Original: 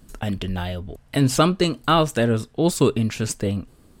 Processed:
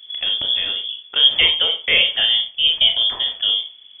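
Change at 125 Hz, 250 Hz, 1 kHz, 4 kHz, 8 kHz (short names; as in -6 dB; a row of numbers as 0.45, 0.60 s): under -20 dB, under -20 dB, -13.0 dB, +18.5 dB, under -40 dB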